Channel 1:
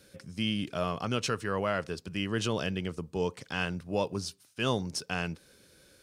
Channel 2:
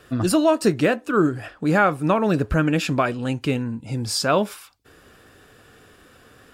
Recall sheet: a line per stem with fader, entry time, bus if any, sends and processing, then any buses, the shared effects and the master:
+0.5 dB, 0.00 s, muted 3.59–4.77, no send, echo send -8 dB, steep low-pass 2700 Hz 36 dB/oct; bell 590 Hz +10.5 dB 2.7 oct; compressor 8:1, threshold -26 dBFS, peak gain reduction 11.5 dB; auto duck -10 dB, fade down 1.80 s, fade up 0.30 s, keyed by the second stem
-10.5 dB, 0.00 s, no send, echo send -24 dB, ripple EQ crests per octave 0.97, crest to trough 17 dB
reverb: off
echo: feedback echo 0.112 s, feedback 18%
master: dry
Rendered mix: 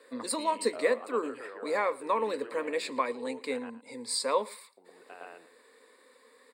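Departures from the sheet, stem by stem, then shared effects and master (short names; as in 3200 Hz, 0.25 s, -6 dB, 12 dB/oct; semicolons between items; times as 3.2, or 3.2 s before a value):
stem 1 +0.5 dB -> -7.0 dB; master: extra HPF 330 Hz 24 dB/oct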